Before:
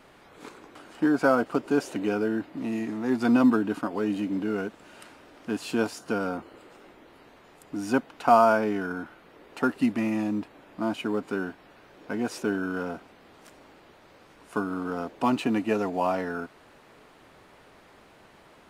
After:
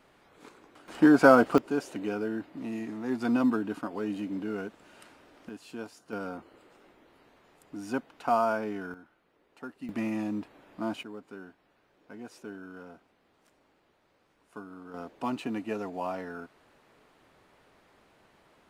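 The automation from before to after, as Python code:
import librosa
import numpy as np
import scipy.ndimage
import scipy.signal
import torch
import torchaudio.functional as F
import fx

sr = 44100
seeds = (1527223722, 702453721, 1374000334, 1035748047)

y = fx.gain(x, sr, db=fx.steps((0.0, -7.5), (0.88, 4.0), (1.58, -5.5), (5.49, -14.0), (6.13, -7.5), (8.94, -17.0), (9.89, -4.5), (11.03, -15.0), (14.94, -8.0)))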